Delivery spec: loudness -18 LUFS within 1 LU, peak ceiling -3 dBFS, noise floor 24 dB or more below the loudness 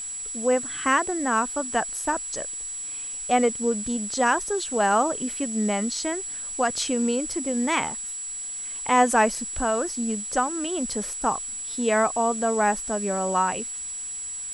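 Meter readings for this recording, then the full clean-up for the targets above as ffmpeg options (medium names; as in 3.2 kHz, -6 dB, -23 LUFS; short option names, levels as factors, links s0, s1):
steady tone 7.8 kHz; tone level -31 dBFS; noise floor -34 dBFS; noise floor target -49 dBFS; loudness -25.0 LUFS; peak level -6.5 dBFS; loudness target -18.0 LUFS
-> -af "bandreject=f=7800:w=30"
-af "afftdn=nr=15:nf=-34"
-af "volume=2.24,alimiter=limit=0.708:level=0:latency=1"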